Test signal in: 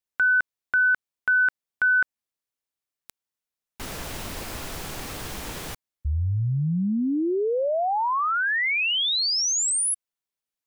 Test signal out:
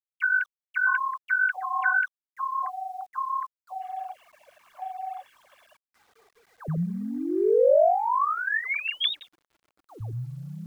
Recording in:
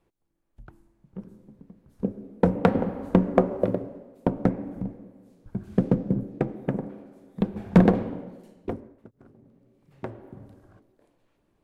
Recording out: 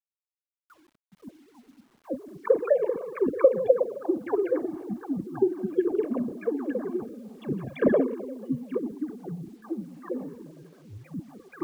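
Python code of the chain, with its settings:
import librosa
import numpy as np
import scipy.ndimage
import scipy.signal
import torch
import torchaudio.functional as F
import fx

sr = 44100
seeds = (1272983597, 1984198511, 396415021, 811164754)

y = fx.sine_speech(x, sr)
y = y + 0.52 * np.pad(y, (int(1.8 * sr / 1000.0), 0))[:len(y)]
y = fx.dispersion(y, sr, late='lows', ms=90.0, hz=920.0)
y = fx.echo_pitch(y, sr, ms=553, semitones=-6, count=2, db_per_echo=-6.0)
y = fx.quant_dither(y, sr, seeds[0], bits=10, dither='none')
y = y * librosa.db_to_amplitude(-3.0)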